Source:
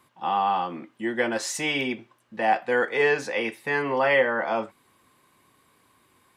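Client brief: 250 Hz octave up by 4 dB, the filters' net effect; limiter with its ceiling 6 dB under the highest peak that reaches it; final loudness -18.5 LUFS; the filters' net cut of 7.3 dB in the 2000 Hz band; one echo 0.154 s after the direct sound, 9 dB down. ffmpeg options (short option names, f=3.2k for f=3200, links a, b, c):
-af "equalizer=f=250:t=o:g=5,equalizer=f=2k:t=o:g=-9,alimiter=limit=-16dB:level=0:latency=1,aecho=1:1:154:0.355,volume=8dB"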